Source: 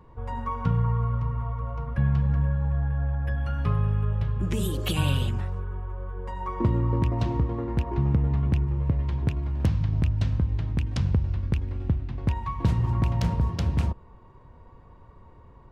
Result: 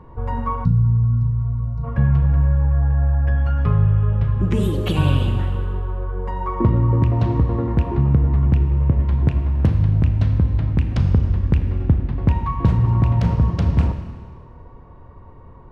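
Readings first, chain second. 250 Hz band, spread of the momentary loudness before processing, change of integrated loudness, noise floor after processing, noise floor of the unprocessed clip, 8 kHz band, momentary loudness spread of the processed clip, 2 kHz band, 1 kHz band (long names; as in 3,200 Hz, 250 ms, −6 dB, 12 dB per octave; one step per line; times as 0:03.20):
+7.0 dB, 7 LU, +7.5 dB, −42 dBFS, −51 dBFS, can't be measured, 7 LU, +4.0 dB, +5.5 dB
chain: four-comb reverb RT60 1.6 s, combs from 26 ms, DRR 7 dB
in parallel at +2 dB: speech leveller within 3 dB 0.5 s
on the sum: high-shelf EQ 2,900 Hz −10.5 dB
gain on a spectral selection 0:00.65–0:01.84, 250–3,800 Hz −17 dB
high-shelf EQ 6,500 Hz −5.5 dB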